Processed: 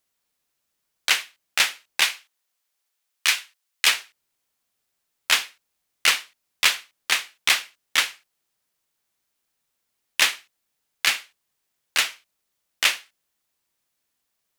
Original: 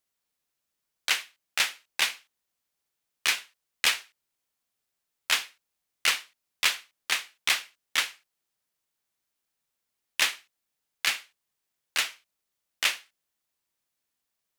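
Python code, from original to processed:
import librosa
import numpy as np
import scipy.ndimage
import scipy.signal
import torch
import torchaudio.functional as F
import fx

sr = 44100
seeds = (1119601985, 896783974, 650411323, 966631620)

y = fx.highpass(x, sr, hz=fx.line((2.01, 530.0), (3.86, 1400.0)), slope=6, at=(2.01, 3.86), fade=0.02)
y = y * 10.0 ** (5.5 / 20.0)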